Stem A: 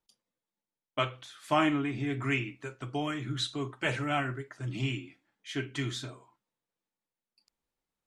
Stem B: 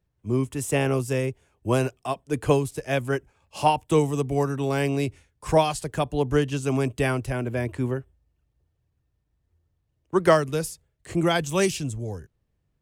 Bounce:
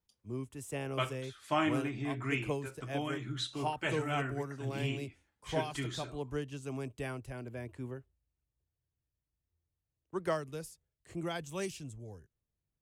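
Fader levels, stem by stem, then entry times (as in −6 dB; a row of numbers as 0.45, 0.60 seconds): −4.5, −15.5 decibels; 0.00, 0.00 seconds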